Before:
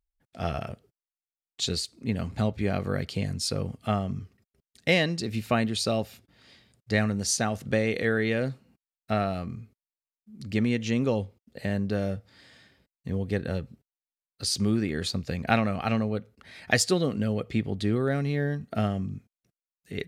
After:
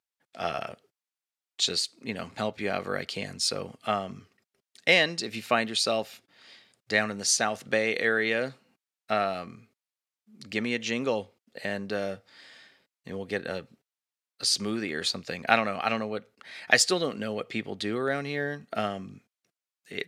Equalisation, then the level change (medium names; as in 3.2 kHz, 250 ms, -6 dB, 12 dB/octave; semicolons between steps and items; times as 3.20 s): frequency weighting A; +3.0 dB